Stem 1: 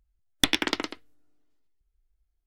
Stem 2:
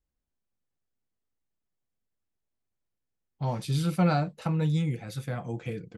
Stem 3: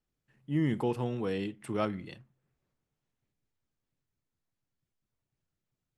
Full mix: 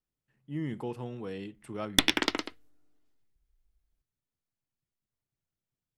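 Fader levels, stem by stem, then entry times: -1.0 dB, off, -6.0 dB; 1.55 s, off, 0.00 s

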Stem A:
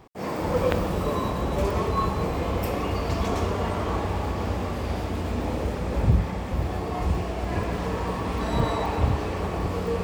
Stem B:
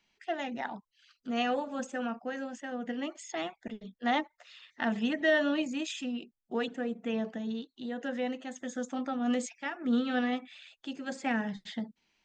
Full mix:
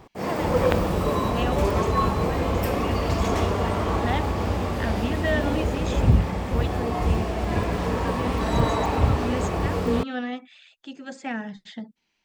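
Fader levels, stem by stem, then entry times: +2.5, 0.0 dB; 0.00, 0.00 s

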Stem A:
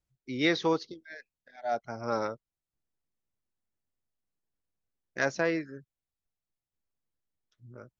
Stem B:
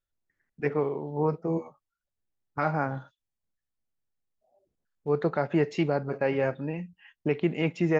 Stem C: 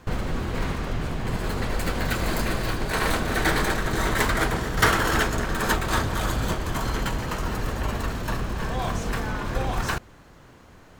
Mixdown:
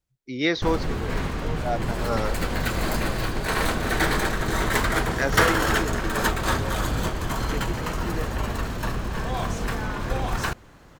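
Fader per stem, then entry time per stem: +3.0, -10.0, 0.0 dB; 0.00, 0.25, 0.55 s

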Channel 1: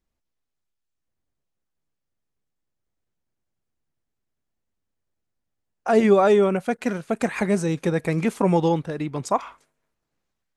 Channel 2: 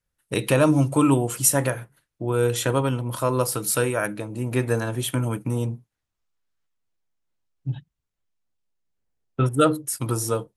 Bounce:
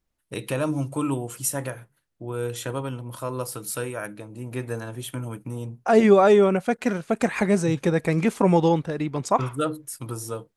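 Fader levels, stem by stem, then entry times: +1.0, -7.5 dB; 0.00, 0.00 s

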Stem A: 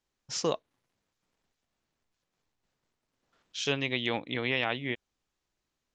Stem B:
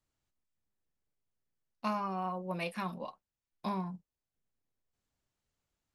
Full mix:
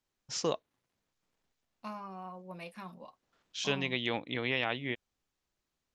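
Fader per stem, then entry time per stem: -2.5, -8.5 dB; 0.00, 0.00 s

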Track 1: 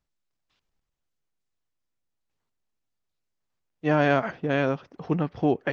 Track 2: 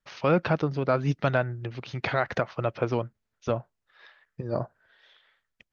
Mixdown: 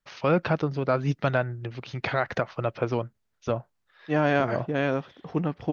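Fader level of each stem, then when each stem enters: -1.5, 0.0 dB; 0.25, 0.00 s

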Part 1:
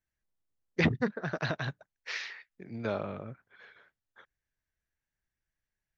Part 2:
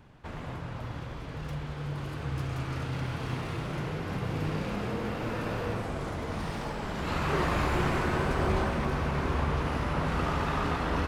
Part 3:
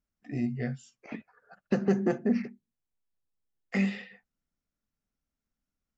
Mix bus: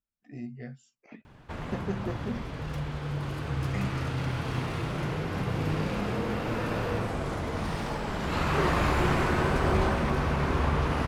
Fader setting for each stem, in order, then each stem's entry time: off, +2.5 dB, -8.5 dB; off, 1.25 s, 0.00 s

